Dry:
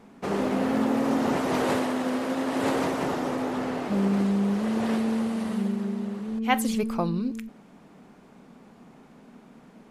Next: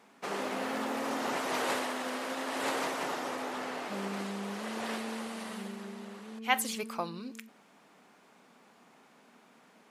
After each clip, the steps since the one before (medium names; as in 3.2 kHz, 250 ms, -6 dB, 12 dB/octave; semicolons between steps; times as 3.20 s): high-pass 1.2 kHz 6 dB/octave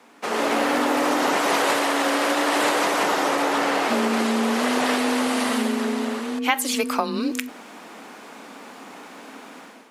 level rider gain up to 11.5 dB; frequency shift +28 Hz; compression 6:1, threshold -26 dBFS, peak gain reduction 13 dB; trim +8 dB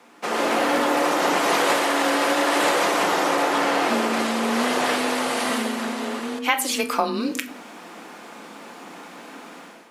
simulated room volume 430 m³, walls furnished, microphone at 0.83 m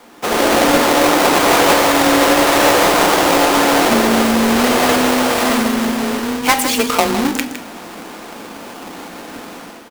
square wave that keeps the level; delay 159 ms -10.5 dB; trim +3.5 dB